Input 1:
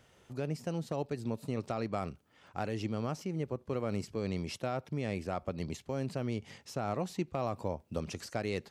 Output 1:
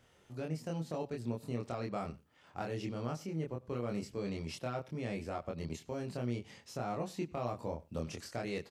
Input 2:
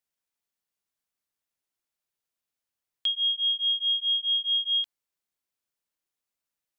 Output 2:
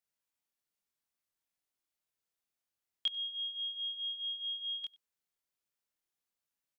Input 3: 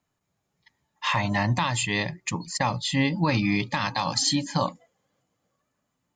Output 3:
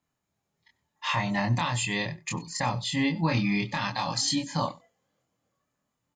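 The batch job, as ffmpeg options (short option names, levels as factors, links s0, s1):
-filter_complex "[0:a]asplit=2[s0][s1];[s1]adelay=25,volume=0.794[s2];[s0][s2]amix=inputs=2:normalize=0,aecho=1:1:95:0.075,volume=0.562"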